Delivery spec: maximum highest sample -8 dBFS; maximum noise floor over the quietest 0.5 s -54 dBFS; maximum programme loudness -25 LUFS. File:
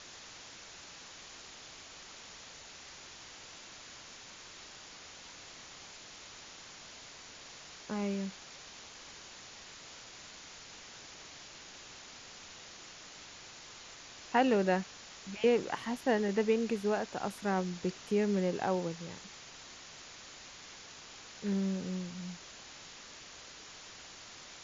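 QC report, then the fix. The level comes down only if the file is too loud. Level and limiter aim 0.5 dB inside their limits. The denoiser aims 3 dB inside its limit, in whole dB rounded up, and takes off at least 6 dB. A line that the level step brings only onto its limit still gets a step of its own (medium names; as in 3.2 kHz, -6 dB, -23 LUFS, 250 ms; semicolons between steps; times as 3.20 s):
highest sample -15.0 dBFS: pass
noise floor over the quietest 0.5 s -51 dBFS: fail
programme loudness -37.5 LUFS: pass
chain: noise reduction 6 dB, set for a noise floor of -51 dBFS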